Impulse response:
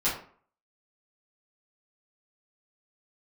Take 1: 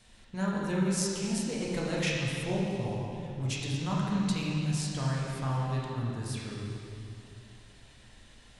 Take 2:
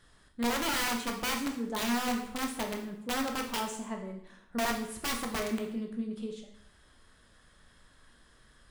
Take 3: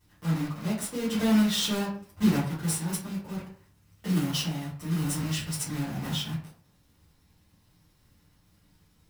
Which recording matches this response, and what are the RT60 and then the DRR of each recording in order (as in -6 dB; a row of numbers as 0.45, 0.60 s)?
3; 2.7, 0.75, 0.50 s; -5.0, 2.0, -12.0 dB